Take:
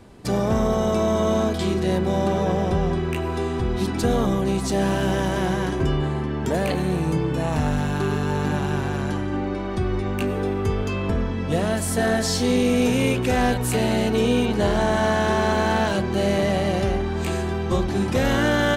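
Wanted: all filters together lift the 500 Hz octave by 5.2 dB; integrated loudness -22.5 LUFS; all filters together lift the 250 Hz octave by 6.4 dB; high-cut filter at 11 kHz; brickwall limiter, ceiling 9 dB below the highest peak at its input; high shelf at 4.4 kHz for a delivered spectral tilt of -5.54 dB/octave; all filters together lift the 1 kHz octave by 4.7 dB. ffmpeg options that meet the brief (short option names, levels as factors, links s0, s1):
-af "lowpass=11000,equalizer=f=250:t=o:g=7,equalizer=f=500:t=o:g=3.5,equalizer=f=1000:t=o:g=4.5,highshelf=f=4400:g=-5,volume=0.944,alimiter=limit=0.2:level=0:latency=1"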